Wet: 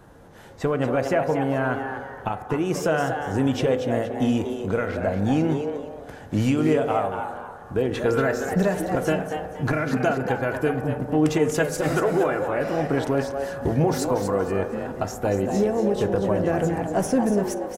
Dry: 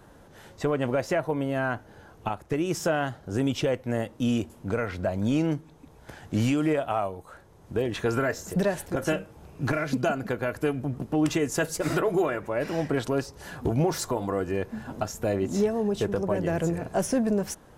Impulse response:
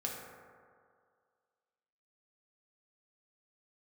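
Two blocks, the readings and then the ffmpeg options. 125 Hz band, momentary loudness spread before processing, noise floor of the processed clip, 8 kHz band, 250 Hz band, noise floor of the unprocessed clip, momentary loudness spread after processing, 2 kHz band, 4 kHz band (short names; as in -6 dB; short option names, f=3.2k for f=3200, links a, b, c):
+3.5 dB, 7 LU, -41 dBFS, +0.5 dB, +3.5 dB, -53 dBFS, 8 LU, +3.5 dB, +0.5 dB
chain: -filter_complex "[0:a]asplit=5[a][b][c][d][e];[b]adelay=236,afreqshift=140,volume=-8dB[f];[c]adelay=472,afreqshift=280,volume=-18.5dB[g];[d]adelay=708,afreqshift=420,volume=-28.9dB[h];[e]adelay=944,afreqshift=560,volume=-39.4dB[i];[a][f][g][h][i]amix=inputs=5:normalize=0,asplit=2[j][k];[1:a]atrim=start_sample=2205,lowpass=2.7k[l];[k][l]afir=irnorm=-1:irlink=0,volume=-6dB[m];[j][m]amix=inputs=2:normalize=0"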